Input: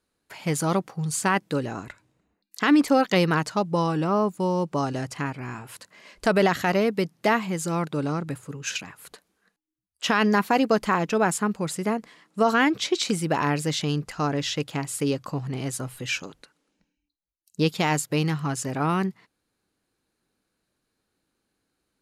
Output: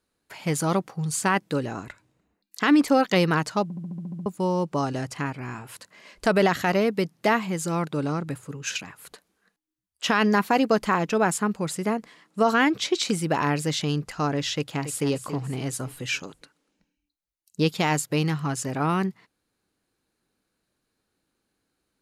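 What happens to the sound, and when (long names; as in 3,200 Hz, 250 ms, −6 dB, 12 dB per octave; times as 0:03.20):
0:03.63: stutter in place 0.07 s, 9 plays
0:14.54–0:15.07: delay throw 280 ms, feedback 45%, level −10.5 dB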